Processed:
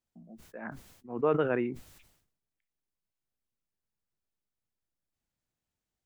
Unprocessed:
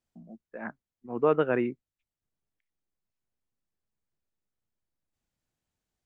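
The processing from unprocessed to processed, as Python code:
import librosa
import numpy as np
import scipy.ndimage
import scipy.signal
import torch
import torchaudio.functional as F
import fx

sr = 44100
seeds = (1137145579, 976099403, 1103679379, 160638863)

y = fx.sustainer(x, sr, db_per_s=77.0)
y = F.gain(torch.from_numpy(y), -3.5).numpy()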